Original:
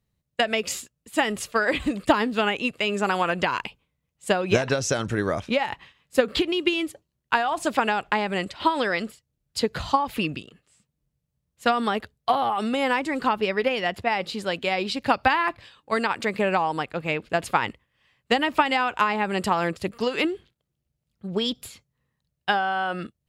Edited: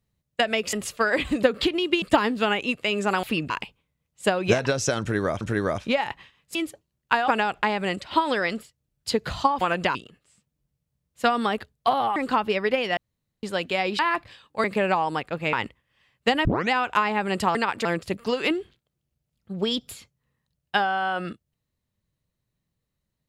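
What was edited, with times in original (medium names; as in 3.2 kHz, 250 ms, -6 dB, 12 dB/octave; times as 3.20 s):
0.73–1.28 s: delete
3.19–3.53 s: swap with 10.10–10.37 s
5.03–5.44 s: loop, 2 plays
6.17–6.76 s: move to 1.98 s
7.49–7.77 s: delete
12.58–13.09 s: delete
13.90–14.36 s: room tone
14.92–15.32 s: delete
15.97–16.27 s: move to 19.59 s
17.16–17.57 s: delete
18.49 s: tape start 0.26 s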